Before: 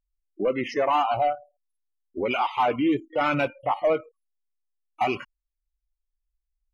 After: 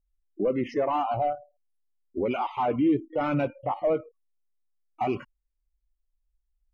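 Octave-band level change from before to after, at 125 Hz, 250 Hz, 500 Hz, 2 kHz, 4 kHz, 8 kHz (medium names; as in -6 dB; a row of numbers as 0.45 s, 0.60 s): +2.5 dB, +0.5 dB, -1.5 dB, -9.0 dB, -10.5 dB, no reading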